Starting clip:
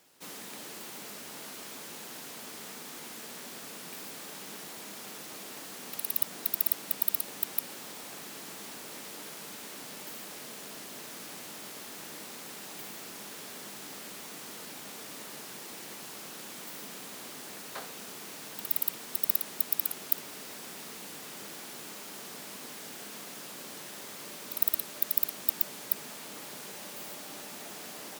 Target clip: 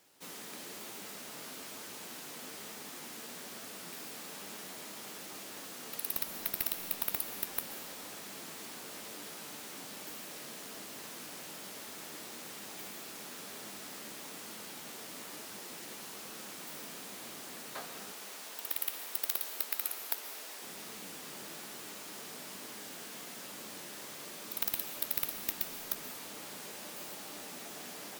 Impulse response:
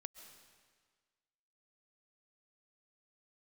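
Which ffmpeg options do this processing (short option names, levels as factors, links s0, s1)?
-filter_complex "[0:a]flanger=delay=8.8:depth=5:regen=63:speed=1.1:shape=triangular,aeval=exprs='0.1*(abs(mod(val(0)/0.1+3,4)-2)-1)':c=same,asettb=1/sr,asplit=3[s0][s1][s2];[s0]atrim=end=18.124[s3];[s1]atrim=start=18.12:end=20.62,asetpts=PTS-STARTPTS,afade=t=in:d=0.004:c=qsin,afade=t=out:st=2.496:d=0.004:c=qsin,highpass=440[s4];[s2]atrim=start=20.616[s5];[s3][s4]acrossfade=d=0.004:c1=hsin:c2=qsin[s6];[s6][s5]acrossfade=d=0.004:c1=qsin:c2=hsin[s7];[1:a]atrim=start_sample=2205[s8];[s7][s8]afir=irnorm=-1:irlink=0,volume=2.37"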